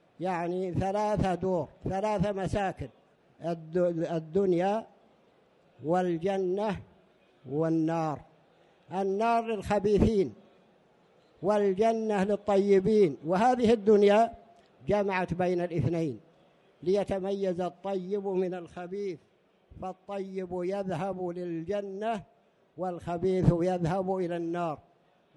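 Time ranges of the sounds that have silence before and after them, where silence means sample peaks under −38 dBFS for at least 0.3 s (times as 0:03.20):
0:03.42–0:04.83
0:05.83–0:06.80
0:07.47–0:08.18
0:08.91–0:10.30
0:11.43–0:14.34
0:14.88–0:16.15
0:16.83–0:19.15
0:19.80–0:22.20
0:22.79–0:24.75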